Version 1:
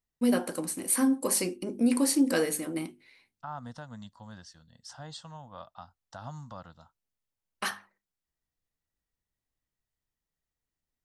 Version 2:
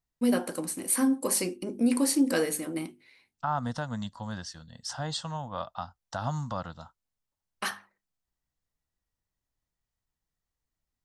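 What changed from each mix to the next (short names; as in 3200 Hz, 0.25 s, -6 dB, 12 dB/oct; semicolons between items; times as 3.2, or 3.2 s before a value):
second voice +10.0 dB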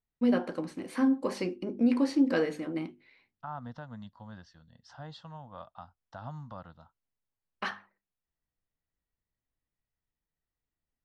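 second voice -9.5 dB; master: add air absorption 230 m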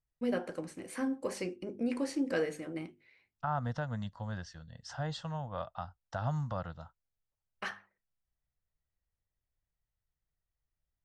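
second voice +11.5 dB; master: add graphic EQ 250/1000/4000/8000 Hz -9/-7/-7/+6 dB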